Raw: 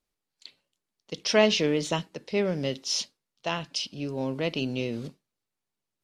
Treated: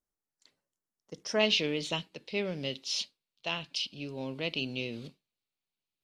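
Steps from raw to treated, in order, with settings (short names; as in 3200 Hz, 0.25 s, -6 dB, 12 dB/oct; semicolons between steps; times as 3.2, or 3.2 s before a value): band shelf 3200 Hz -11 dB 1.2 oct, from 1.39 s +8 dB; gain -7.5 dB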